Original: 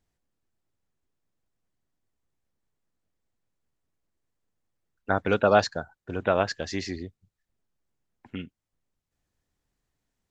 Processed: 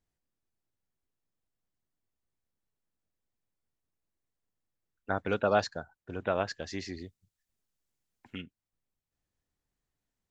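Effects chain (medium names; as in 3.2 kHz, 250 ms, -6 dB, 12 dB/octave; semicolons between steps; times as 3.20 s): 6.96–8.40 s: treble shelf 3.2 kHz -> 2.2 kHz +10.5 dB; trim -6.5 dB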